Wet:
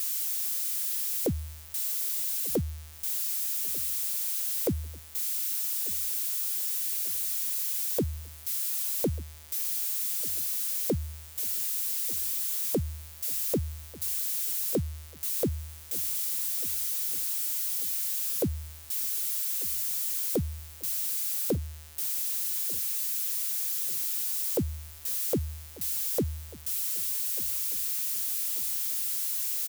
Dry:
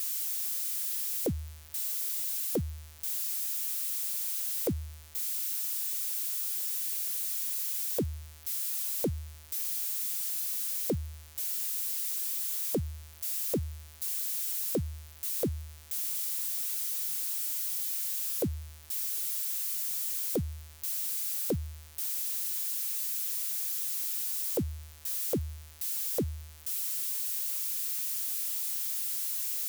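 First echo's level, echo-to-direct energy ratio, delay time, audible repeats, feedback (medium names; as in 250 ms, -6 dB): -20.5 dB, -19.5 dB, 1192 ms, 3, 47%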